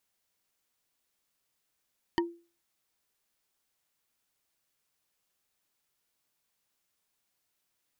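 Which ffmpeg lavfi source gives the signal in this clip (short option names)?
-f lavfi -i "aevalsrc='0.0794*pow(10,-3*t/0.35)*sin(2*PI*341*t)+0.0631*pow(10,-3*t/0.104)*sin(2*PI*940.1*t)+0.0501*pow(10,-3*t/0.046)*sin(2*PI*1842.8*t)+0.0398*pow(10,-3*t/0.025)*sin(2*PI*3046.2*t)+0.0316*pow(10,-3*t/0.016)*sin(2*PI*4548.9*t)':d=0.45:s=44100"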